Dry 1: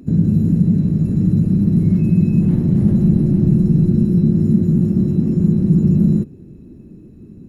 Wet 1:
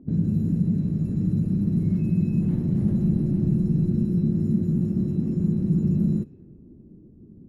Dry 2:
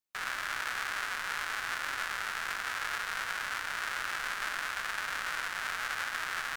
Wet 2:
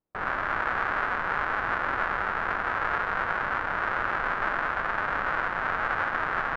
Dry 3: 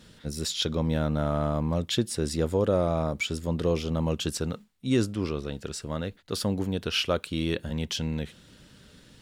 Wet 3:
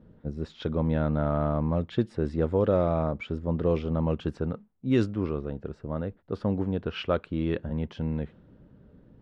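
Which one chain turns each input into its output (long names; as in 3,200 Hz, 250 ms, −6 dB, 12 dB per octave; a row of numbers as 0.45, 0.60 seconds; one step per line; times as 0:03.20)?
low-pass that shuts in the quiet parts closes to 650 Hz, open at −12.5 dBFS
normalise the peak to −12 dBFS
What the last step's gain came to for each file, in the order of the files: −8.5, +15.5, +0.5 decibels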